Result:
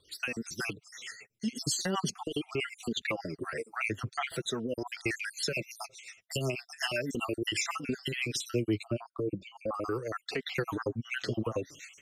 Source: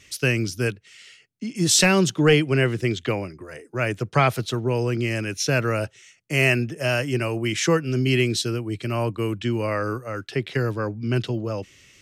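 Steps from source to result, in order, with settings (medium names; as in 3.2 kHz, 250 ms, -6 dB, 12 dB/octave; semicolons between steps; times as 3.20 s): random holes in the spectrogram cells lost 60%; bass shelf 170 Hz -11.5 dB; level rider gain up to 15 dB; peak limiter -11 dBFS, peak gain reduction 10 dB; compression 3:1, threshold -25 dBFS, peak gain reduction 7.5 dB; 8.83–9.74 s: boxcar filter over 22 samples; flange 0.4 Hz, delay 2 ms, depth 7.6 ms, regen +11%; rotary cabinet horn 8 Hz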